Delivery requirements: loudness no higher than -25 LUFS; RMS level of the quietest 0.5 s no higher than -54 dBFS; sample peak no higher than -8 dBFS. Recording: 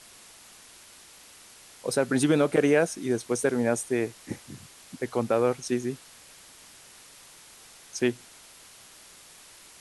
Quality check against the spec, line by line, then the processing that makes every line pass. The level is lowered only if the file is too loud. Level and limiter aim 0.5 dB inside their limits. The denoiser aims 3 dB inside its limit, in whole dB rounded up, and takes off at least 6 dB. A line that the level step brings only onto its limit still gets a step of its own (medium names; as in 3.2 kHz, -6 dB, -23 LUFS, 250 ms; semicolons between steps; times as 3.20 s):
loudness -26.5 LUFS: pass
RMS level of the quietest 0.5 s -51 dBFS: fail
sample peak -9.0 dBFS: pass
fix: noise reduction 6 dB, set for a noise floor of -51 dBFS